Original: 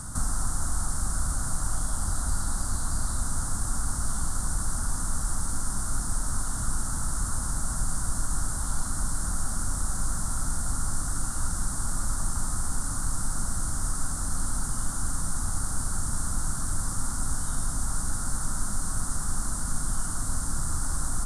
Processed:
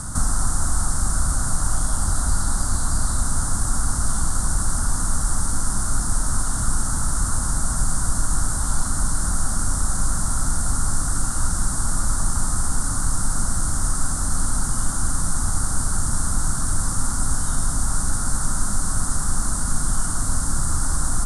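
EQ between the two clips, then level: LPF 12000 Hz 24 dB/oct; +7.0 dB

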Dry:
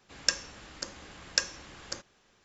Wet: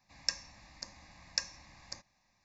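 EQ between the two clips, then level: fixed phaser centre 2100 Hz, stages 8; -5.0 dB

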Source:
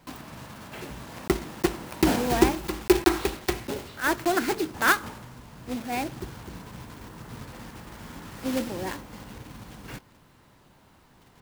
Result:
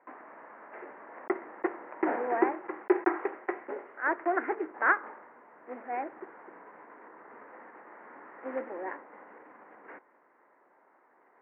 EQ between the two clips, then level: HPF 360 Hz 24 dB/oct; elliptic low-pass 2000 Hz, stop band 50 dB; air absorption 70 m; -2.0 dB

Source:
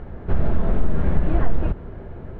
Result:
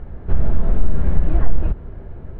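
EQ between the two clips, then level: low shelf 97 Hz +8.5 dB; -3.5 dB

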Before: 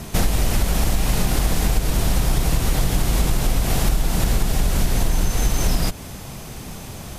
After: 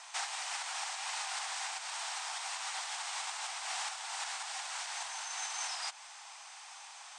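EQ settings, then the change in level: elliptic high-pass 810 Hz, stop band 60 dB; Chebyshev low-pass 8700 Hz, order 5; -7.5 dB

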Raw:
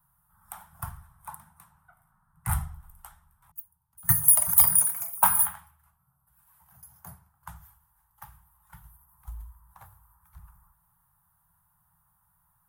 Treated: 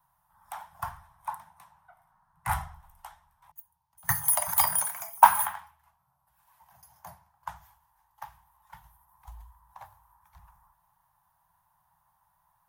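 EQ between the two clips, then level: band shelf 3300 Hz +11 dB 2.3 oct; dynamic EQ 1400 Hz, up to +6 dB, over -50 dBFS, Q 1.8; band shelf 760 Hz +13.5 dB 1.2 oct; -7.0 dB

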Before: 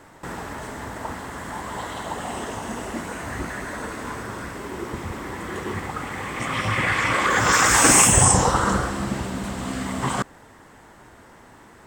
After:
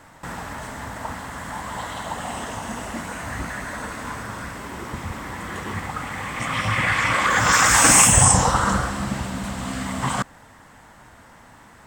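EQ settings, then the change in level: bell 380 Hz -9.5 dB 0.67 oct; +1.5 dB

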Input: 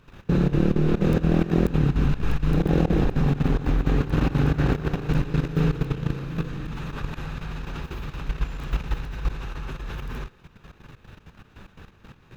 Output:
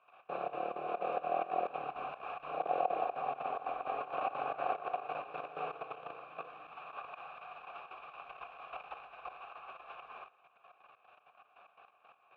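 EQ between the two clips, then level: dynamic EQ 560 Hz, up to +5 dB, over -37 dBFS, Q 0.88; vowel filter a; three-band isolator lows -18 dB, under 540 Hz, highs -21 dB, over 3600 Hz; +5.0 dB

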